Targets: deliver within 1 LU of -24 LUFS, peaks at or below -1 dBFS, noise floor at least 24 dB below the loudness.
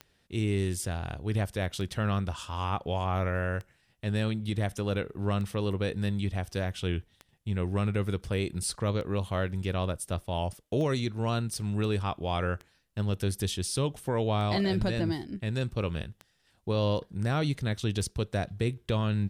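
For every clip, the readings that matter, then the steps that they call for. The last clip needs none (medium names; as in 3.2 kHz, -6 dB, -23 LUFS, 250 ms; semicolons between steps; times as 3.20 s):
clicks found 11; loudness -31.0 LUFS; peak level -18.0 dBFS; loudness target -24.0 LUFS
-> de-click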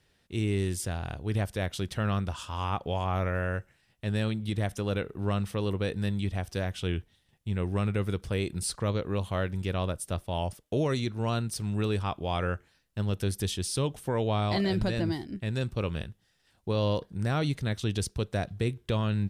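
clicks found 0; loudness -31.0 LUFS; peak level -18.0 dBFS; loudness target -24.0 LUFS
-> trim +7 dB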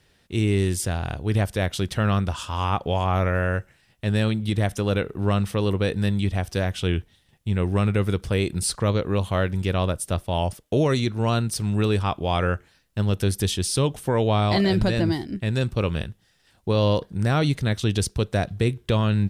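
loudness -24.0 LUFS; peak level -11.0 dBFS; noise floor -62 dBFS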